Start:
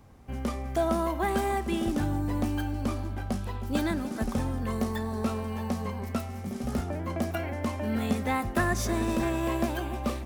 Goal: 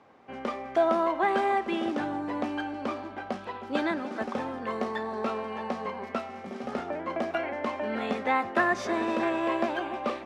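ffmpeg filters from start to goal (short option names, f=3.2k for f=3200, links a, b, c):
-af "highpass=390,lowpass=3k,volume=4.5dB"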